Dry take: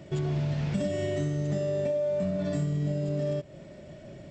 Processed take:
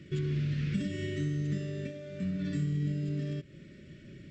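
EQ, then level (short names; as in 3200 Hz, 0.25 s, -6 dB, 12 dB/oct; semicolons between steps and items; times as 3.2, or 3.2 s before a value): Butterworth band-stop 780 Hz, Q 0.55; LPF 1600 Hz 6 dB/oct; low shelf 460 Hz -9 dB; +6.0 dB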